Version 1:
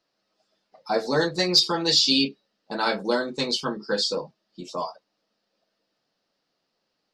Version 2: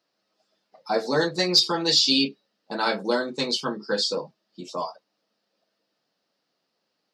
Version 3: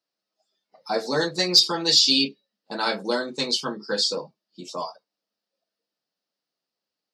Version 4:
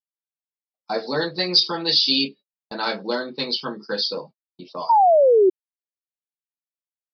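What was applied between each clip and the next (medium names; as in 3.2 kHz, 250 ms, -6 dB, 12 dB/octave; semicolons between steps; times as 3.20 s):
high-pass 120 Hz
spectral noise reduction 11 dB; treble shelf 4.1 kHz +7 dB; trim -1.5 dB
resampled via 11.025 kHz; gate -41 dBFS, range -45 dB; painted sound fall, 4.89–5.50 s, 360–960 Hz -14 dBFS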